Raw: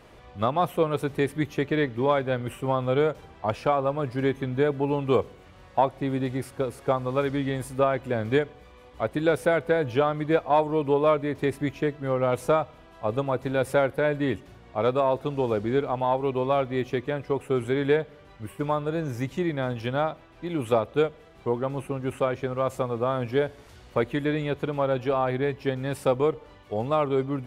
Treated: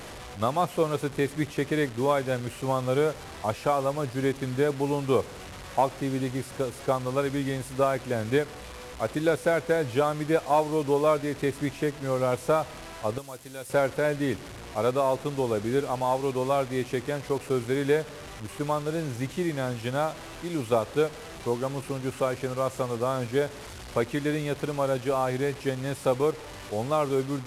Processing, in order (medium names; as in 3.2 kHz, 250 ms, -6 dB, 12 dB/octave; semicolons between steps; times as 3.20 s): one-bit delta coder 64 kbps, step -34 dBFS; 13.18–13.70 s: pre-emphasis filter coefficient 0.8; trim -1.5 dB